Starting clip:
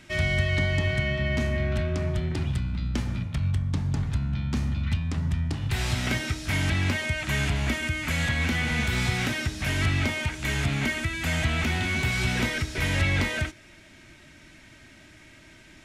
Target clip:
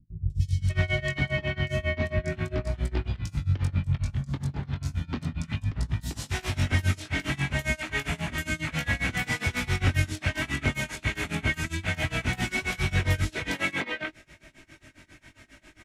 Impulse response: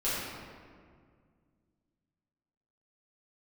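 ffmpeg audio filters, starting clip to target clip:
-filter_complex "[0:a]flanger=delay=18.5:depth=4.1:speed=0.36,acrossover=split=190|4200[s0][s1][s2];[s2]adelay=300[s3];[s1]adelay=600[s4];[s0][s4][s3]amix=inputs=3:normalize=0,tremolo=f=7.4:d=0.94,volume=1.88"

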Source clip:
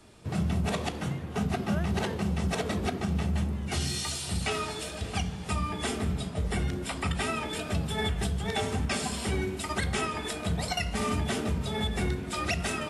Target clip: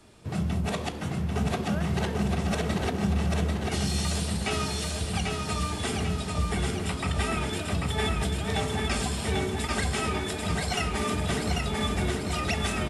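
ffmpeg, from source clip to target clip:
-af "aecho=1:1:792|1584|2376|3168|3960|4752|5544:0.708|0.382|0.206|0.111|0.0602|0.0325|0.0176"

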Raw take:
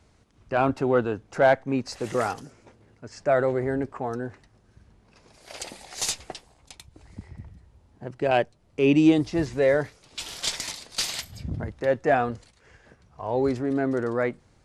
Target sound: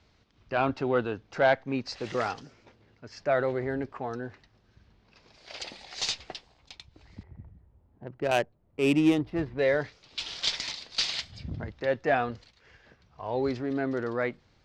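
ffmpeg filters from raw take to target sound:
-filter_complex "[0:a]lowpass=f=4700:w=0.5412,lowpass=f=4700:w=1.3066,highshelf=f=2500:g=11,asettb=1/sr,asplit=3[s0][s1][s2];[s0]atrim=end=7.234[s3];[s1]atrim=start=7.23:end=9.59,asetpts=PTS-STARTPTS,afade=t=in:d=0.004:c=qsin,afade=t=out:st=2.356:d=0.004:c=qsin,adynamicsmooth=sensitivity=1.5:basefreq=1100[s4];[s2]atrim=start=9.586[s5];[s3][s4]acrossfade=d=0.004:c1=hsin:c2=qsin[s6];[s6][s5]acrossfade=d=0.004:c1=qsin:c2=hsin,volume=0.562"

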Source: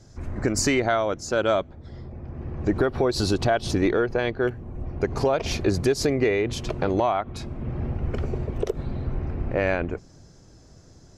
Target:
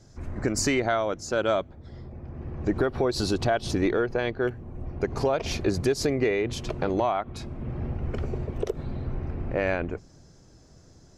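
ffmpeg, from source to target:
-af "bandreject=f=50:t=h:w=6,bandreject=f=100:t=h:w=6,volume=0.75"

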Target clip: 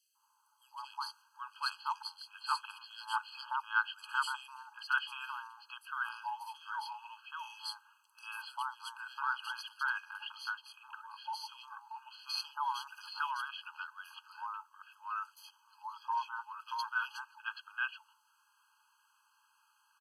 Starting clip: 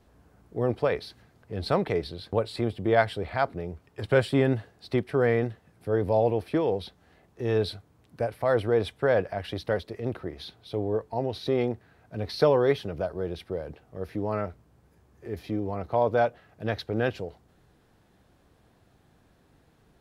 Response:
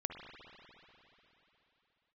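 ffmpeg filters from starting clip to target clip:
-filter_complex "[0:a]asettb=1/sr,asplit=3[s0][s1][s2];[s0]atrim=end=12.874[s3];[s1]atrim=start=12.87:end=13.31,asetpts=PTS-STARTPTS,afade=t=in:d=0.004:c=qsin,afade=t=out:st=0.436:d=0.004:c=qsin,tiltshelf=f=970:g=-8.5[s4];[s2]atrim=start=13.306[s5];[s3][s4]acrossfade=d=0.004:c1=hsin:c2=qsin[s6];[s6][s5]acrossfade=d=0.004:c1=qsin:c2=hsin,acrossover=split=1100|3300[s7][s8][s9];[s7]adelay=150[s10];[s8]adelay=780[s11];[s10][s11][s9]amix=inputs=3:normalize=0,afreqshift=-25,afftfilt=real='re*eq(mod(floor(b*sr/1024/830),2),1)':imag='im*eq(mod(floor(b*sr/1024/830),2),1)':win_size=1024:overlap=0.75,volume=1.5"

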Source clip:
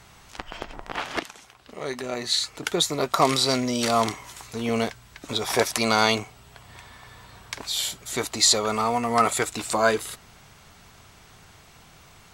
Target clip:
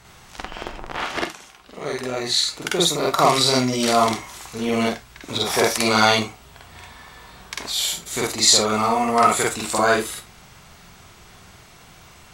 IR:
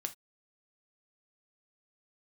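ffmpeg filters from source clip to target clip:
-filter_complex "[0:a]asplit=2[s0][s1];[1:a]atrim=start_sample=2205,adelay=47[s2];[s1][s2]afir=irnorm=-1:irlink=0,volume=1.41[s3];[s0][s3]amix=inputs=2:normalize=0"

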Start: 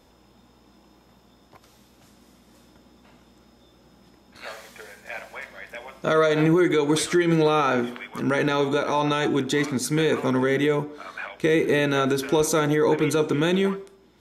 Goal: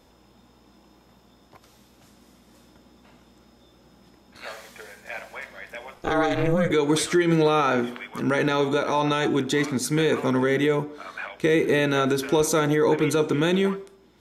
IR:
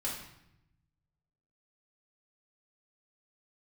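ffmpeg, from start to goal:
-filter_complex "[0:a]asettb=1/sr,asplit=3[s0][s1][s2];[s0]atrim=end=5.944[s3];[s1]atrim=start=5.94:end=6.71,asetpts=PTS-STARTPTS,afade=t=in:d=0.004:c=qsin,afade=t=out:st=0.766:d=0.004:c=qsin,aeval=exprs='val(0)*sin(2*PI*170*n/s)':c=same[s4];[s2]atrim=start=6.706[s5];[s3][s4]acrossfade=d=0.004:c1=hsin:c2=qsin[s6];[s6][s5]acrossfade=d=0.004:c1=qsin:c2=hsin"

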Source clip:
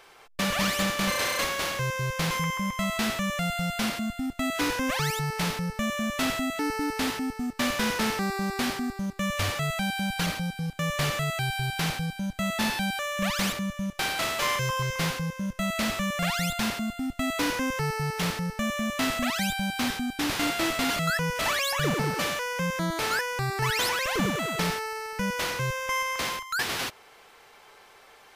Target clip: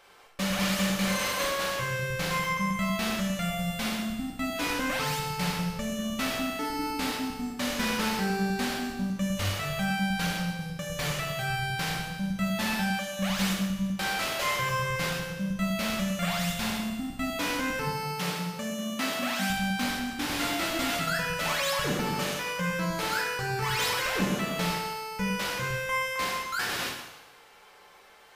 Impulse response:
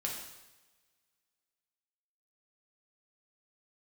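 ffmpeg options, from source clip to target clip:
-filter_complex "[0:a]asettb=1/sr,asplit=3[s0][s1][s2];[s0]atrim=end=17.874[s3];[s1]atrim=start=17.87:end=19.5,asetpts=PTS-STARTPTS,afade=t=in:d=0.004:c=qsin,afade=t=out:st=1.626:d=0.004:c=qsin,highpass=180[s4];[s2]atrim=start=19.496[s5];[s3][s4]acrossfade=d=0.004:c1=hsin:c2=qsin[s6];[s6][s5]acrossfade=d=0.004:c1=qsin:c2=hsin[s7];[1:a]atrim=start_sample=2205[s8];[s7][s8]afir=irnorm=-1:irlink=0,volume=0.668"

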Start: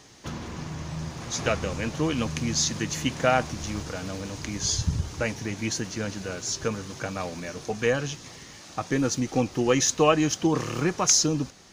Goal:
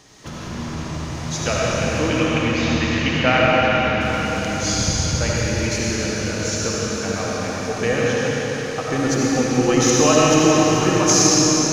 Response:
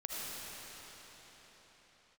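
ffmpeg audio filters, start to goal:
-filter_complex "[0:a]asettb=1/sr,asplit=3[s0][s1][s2];[s0]atrim=end=1.994[s3];[s1]atrim=start=1.99:end=4.01,asetpts=PTS-STARTPTS,afade=t=in:d=0.004:c=qsin,afade=t=out:st=2.016:d=0.004:c=qsin,lowpass=f=2500:t=q:w=2.1[s4];[s2]atrim=start=4.006[s5];[s3][s4]acrossfade=d=0.004:c1=hsin:c2=qsin[s6];[s6][s5]acrossfade=d=0.004:c1=qsin:c2=hsin[s7];[1:a]atrim=start_sample=2205[s8];[s7][s8]afir=irnorm=-1:irlink=0,volume=1.88"

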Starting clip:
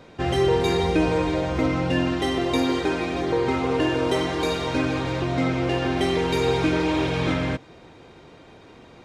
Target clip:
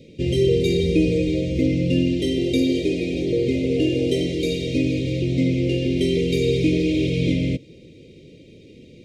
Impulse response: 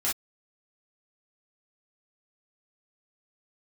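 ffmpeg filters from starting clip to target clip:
-filter_complex "[0:a]asuperstop=centerf=1100:order=12:qfactor=0.68,equalizer=f=170:w=0.65:g=5.5,asettb=1/sr,asplit=3[s0][s1][s2];[s0]atrim=end=1.974[s3];[s1]atrim=start=1.97:end=4.32,asetpts=PTS-STARTPTS,afade=t=in:d=0.004:c=qsin,afade=t=out:st=2.346:d=0.004:c=qsin,asplit=4[s4][s5][s6][s7];[s5]adelay=220,afreqshift=110,volume=0.106[s8];[s6]adelay=440,afreqshift=220,volume=0.0372[s9];[s7]adelay=660,afreqshift=330,volume=0.013[s10];[s4][s8][s9][s10]amix=inputs=4:normalize=0,atrim=end_sample=103635[s11];[s2]atrim=start=4.316[s12];[s3][s11]acrossfade=d=0.004:c1=hsin:c2=qsin[s13];[s13][s12]acrossfade=d=0.004:c1=qsin:c2=hsin"

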